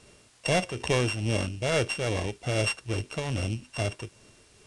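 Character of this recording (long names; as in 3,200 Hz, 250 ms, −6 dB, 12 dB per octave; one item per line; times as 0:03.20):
a buzz of ramps at a fixed pitch in blocks of 16 samples
tremolo triangle 2.4 Hz, depth 65%
a quantiser's noise floor 10 bits, dither triangular
IMA ADPCM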